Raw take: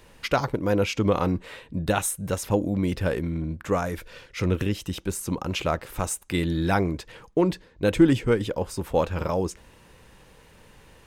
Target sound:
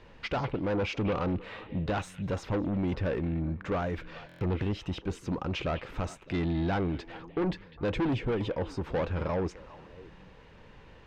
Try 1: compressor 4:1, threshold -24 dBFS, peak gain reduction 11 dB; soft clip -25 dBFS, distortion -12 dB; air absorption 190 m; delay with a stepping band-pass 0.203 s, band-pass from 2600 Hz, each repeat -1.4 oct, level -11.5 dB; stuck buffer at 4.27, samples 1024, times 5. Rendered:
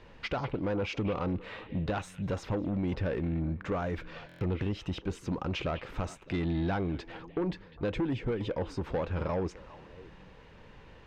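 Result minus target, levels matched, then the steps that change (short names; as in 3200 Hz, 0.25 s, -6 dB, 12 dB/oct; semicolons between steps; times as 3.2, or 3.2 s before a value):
compressor: peak gain reduction +11 dB
remove: compressor 4:1, threshold -24 dBFS, peak gain reduction 11 dB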